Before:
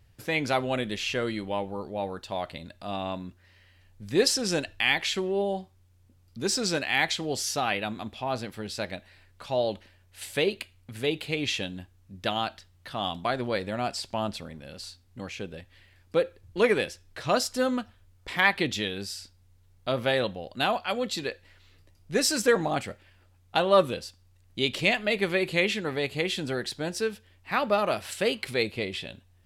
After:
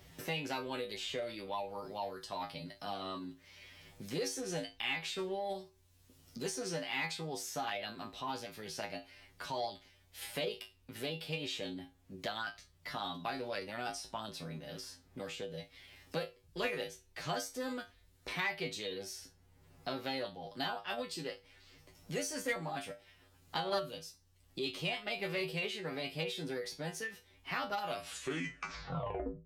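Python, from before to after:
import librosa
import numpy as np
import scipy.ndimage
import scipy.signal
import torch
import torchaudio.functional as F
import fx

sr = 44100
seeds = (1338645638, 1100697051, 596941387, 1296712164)

p1 = fx.tape_stop_end(x, sr, length_s=1.62)
p2 = fx.comb_fb(p1, sr, f0_hz=54.0, decay_s=0.21, harmonics='odd', damping=0.0, mix_pct=100)
p3 = fx.formant_shift(p2, sr, semitones=2)
p4 = 10.0 ** (-29.5 / 20.0) * np.tanh(p3 / 10.0 ** (-29.5 / 20.0))
p5 = p3 + (p4 * 10.0 ** (-8.0 / 20.0))
p6 = fx.band_squash(p5, sr, depth_pct=70)
y = p6 * 10.0 ** (-5.0 / 20.0)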